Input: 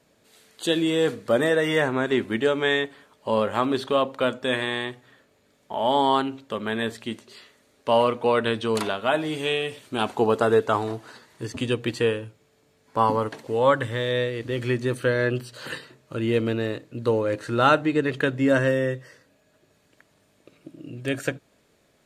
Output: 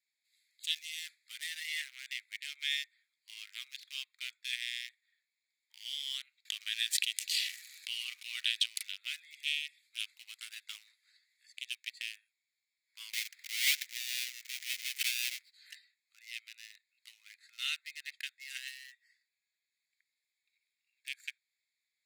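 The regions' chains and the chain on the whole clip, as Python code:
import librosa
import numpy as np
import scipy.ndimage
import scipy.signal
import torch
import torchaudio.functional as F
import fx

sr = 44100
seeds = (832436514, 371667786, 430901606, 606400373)

y = fx.chain(x, sr, fx.notch(hz=2100.0, q=9.3),
    fx.env_flatten(amount_pct=70), at=(6.45, 8.66))
y = fx.chain(y, sr, fx.halfwave_hold(),
    fx.lowpass(hz=3500.0, slope=6),
    fx.pre_swell(db_per_s=87.0), at=(13.13, 15.52))
y = fx.wiener(y, sr, points=15)
y = scipy.signal.sosfilt(scipy.signal.cheby1(5, 1.0, 2100.0, 'highpass', fs=sr, output='sos'), y)
y = fx.high_shelf(y, sr, hz=8700.0, db=10.0)
y = F.gain(torch.from_numpy(y), -3.5).numpy()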